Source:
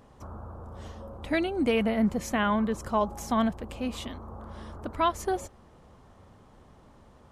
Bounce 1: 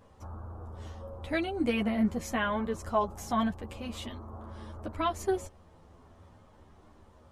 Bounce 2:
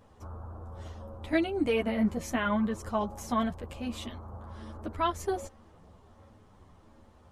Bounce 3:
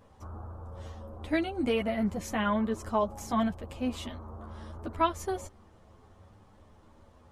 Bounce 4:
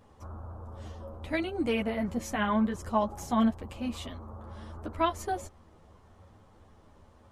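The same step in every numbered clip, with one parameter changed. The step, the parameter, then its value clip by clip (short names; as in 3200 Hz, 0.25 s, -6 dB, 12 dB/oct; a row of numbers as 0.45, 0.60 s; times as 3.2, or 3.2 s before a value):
chorus, rate: 0.2, 0.66, 0.31, 1.2 Hz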